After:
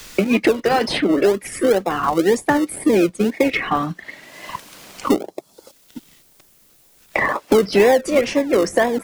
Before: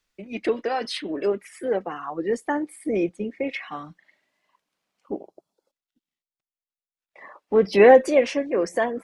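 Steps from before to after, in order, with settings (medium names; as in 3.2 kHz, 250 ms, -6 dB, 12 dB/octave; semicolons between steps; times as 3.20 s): treble shelf 5.7 kHz +7.5 dB; in parallel at -11 dB: decimation with a swept rate 42×, swing 60% 2 Hz; on the sum: three bands compressed up and down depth 100%; trim +6 dB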